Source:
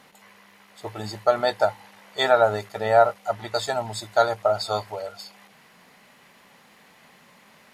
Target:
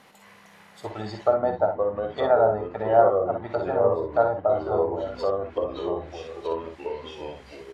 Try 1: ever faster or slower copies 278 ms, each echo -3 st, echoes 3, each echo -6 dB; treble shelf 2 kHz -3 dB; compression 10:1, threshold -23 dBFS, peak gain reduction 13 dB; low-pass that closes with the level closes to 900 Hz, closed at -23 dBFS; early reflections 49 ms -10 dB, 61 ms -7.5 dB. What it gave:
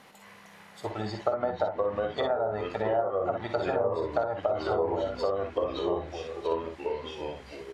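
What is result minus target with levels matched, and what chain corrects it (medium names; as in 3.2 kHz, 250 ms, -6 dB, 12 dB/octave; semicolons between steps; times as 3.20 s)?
compression: peak gain reduction +13 dB
ever faster or slower copies 278 ms, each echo -3 st, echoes 3, each echo -6 dB; treble shelf 2 kHz -3 dB; low-pass that closes with the level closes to 900 Hz, closed at -23 dBFS; early reflections 49 ms -10 dB, 61 ms -7.5 dB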